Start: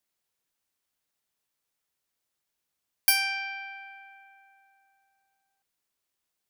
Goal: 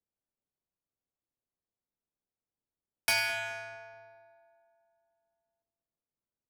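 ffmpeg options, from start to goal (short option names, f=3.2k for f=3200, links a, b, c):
-filter_complex "[0:a]aeval=exprs='val(0)*sin(2*PI*110*n/s)':c=same,adynamicsmooth=sensitivity=7.5:basefreq=710,asplit=2[a][b];[b]adelay=212,lowpass=f=810:p=1,volume=-10dB,asplit=2[c][d];[d]adelay=212,lowpass=f=810:p=1,volume=0.43,asplit=2[e][f];[f]adelay=212,lowpass=f=810:p=1,volume=0.43,asplit=2[g][h];[h]adelay=212,lowpass=f=810:p=1,volume=0.43,asplit=2[i][j];[j]adelay=212,lowpass=f=810:p=1,volume=0.43[k];[a][c][e][g][i][k]amix=inputs=6:normalize=0,volume=1.5dB"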